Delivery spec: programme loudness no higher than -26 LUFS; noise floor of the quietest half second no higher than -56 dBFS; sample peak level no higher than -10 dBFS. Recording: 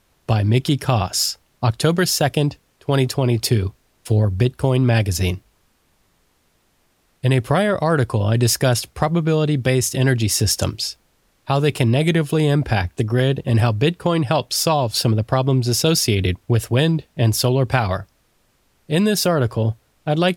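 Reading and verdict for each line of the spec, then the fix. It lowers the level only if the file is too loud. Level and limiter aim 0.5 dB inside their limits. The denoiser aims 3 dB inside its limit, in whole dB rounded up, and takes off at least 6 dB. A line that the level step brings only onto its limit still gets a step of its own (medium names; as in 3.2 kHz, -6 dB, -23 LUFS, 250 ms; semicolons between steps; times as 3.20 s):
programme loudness -19.0 LUFS: fail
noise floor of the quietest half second -63 dBFS: pass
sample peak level -1.5 dBFS: fail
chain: trim -7.5 dB; peak limiter -10.5 dBFS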